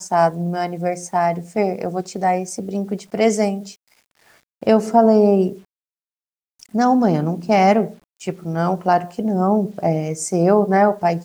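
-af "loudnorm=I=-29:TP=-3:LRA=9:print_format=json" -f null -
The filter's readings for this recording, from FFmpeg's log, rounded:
"input_i" : "-18.7",
"input_tp" : "-2.4",
"input_lra" : "2.9",
"input_thresh" : "-29.2",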